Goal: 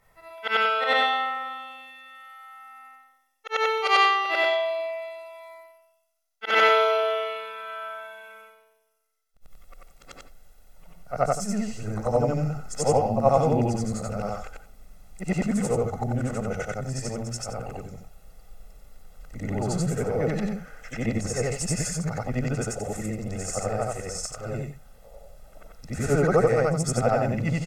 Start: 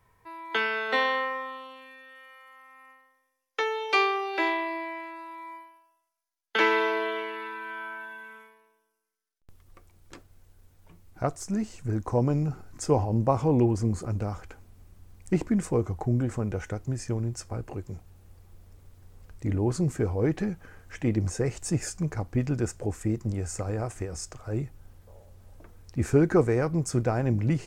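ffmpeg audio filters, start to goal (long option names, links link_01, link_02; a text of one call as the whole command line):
ffmpeg -i in.wav -af "afftfilt=real='re':imag='-im':win_size=8192:overlap=0.75,equalizer=frequency=90:width_type=o:width=1.1:gain=-14.5,aecho=1:1:1.5:0.72,volume=8.5dB" out.wav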